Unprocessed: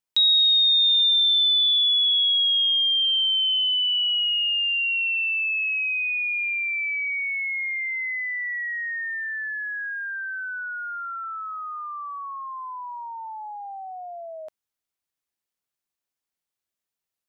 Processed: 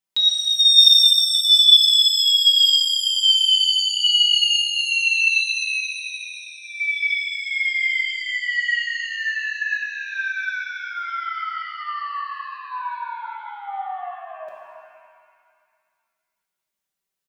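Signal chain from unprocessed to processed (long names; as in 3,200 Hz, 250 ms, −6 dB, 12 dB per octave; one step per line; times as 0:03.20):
0:05.84–0:06.80: low-pass filter 1,000 Hz 12 dB per octave
comb filter 5.2 ms
reverb with rising layers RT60 2 s, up +7 semitones, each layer −8 dB, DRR −1.5 dB
level −1.5 dB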